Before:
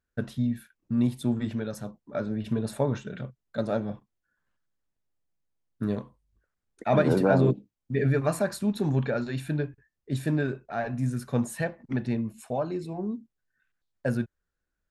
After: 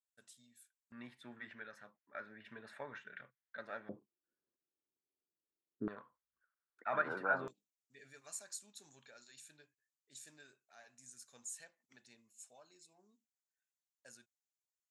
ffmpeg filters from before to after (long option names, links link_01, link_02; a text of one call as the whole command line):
ffmpeg -i in.wav -af "asetnsamples=nb_out_samples=441:pad=0,asendcmd='0.92 bandpass f 1800;3.89 bandpass f 370;5.88 bandpass f 1400;7.48 bandpass f 7000',bandpass=frequency=7900:width_type=q:width=3.6:csg=0" out.wav